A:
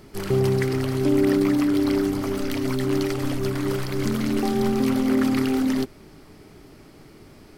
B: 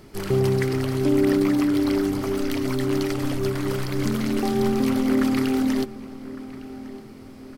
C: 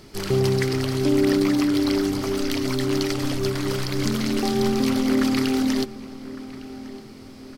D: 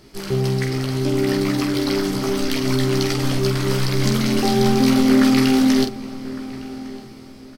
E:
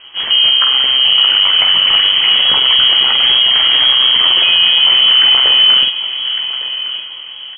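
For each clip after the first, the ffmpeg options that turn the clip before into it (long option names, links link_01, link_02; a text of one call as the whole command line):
ffmpeg -i in.wav -filter_complex "[0:a]asplit=2[link_01][link_02];[link_02]adelay=1157,lowpass=frequency=2200:poles=1,volume=-16dB,asplit=2[link_03][link_04];[link_04]adelay=1157,lowpass=frequency=2200:poles=1,volume=0.49,asplit=2[link_05][link_06];[link_06]adelay=1157,lowpass=frequency=2200:poles=1,volume=0.49,asplit=2[link_07][link_08];[link_08]adelay=1157,lowpass=frequency=2200:poles=1,volume=0.49[link_09];[link_01][link_03][link_05][link_07][link_09]amix=inputs=5:normalize=0" out.wav
ffmpeg -i in.wav -af "equalizer=frequency=4800:width_type=o:width=1.5:gain=7.5" out.wav
ffmpeg -i in.wav -filter_complex "[0:a]bandreject=frequency=7100:width=28,dynaudnorm=framelen=520:gausssize=5:maxgain=8.5dB,asplit=2[link_01][link_02];[link_02]aecho=0:1:15|47:0.562|0.473[link_03];[link_01][link_03]amix=inputs=2:normalize=0,volume=-3dB" out.wav
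ffmpeg -i in.wav -af "lowpass=frequency=2800:width_type=q:width=0.5098,lowpass=frequency=2800:width_type=q:width=0.6013,lowpass=frequency=2800:width_type=q:width=0.9,lowpass=frequency=2800:width_type=q:width=2.563,afreqshift=-3300,alimiter=level_in=12dB:limit=-1dB:release=50:level=0:latency=1,volume=-1dB" out.wav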